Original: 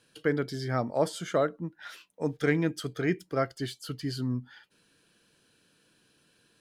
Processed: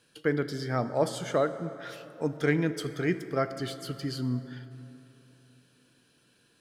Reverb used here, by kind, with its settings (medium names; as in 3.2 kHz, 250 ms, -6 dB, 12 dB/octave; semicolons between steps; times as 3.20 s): plate-style reverb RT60 3.3 s, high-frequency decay 0.5×, DRR 11 dB